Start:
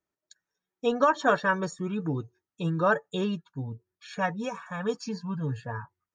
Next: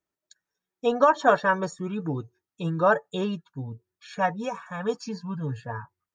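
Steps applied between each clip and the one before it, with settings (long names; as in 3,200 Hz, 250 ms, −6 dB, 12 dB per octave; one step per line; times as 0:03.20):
dynamic equaliser 740 Hz, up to +6 dB, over −39 dBFS, Q 1.3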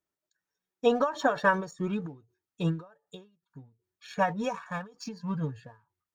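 in parallel at −4.5 dB: dead-zone distortion −44 dBFS
on the sum: every ending faded ahead of time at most 160 dB per second
level −2.5 dB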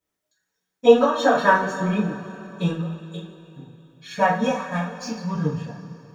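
coupled-rooms reverb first 0.35 s, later 3.1 s, from −18 dB, DRR −9 dB
level −1 dB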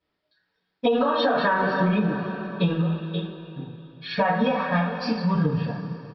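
brickwall limiter −13.5 dBFS, peak gain reduction 11.5 dB
downward compressor, threshold −24 dBFS, peak gain reduction 7 dB
downsampling to 11,025 Hz
level +6 dB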